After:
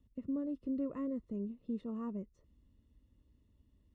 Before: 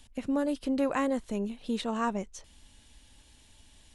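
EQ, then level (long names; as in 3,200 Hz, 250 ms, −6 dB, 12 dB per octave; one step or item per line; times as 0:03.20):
moving average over 56 samples
high-pass filter 43 Hz
−5.0 dB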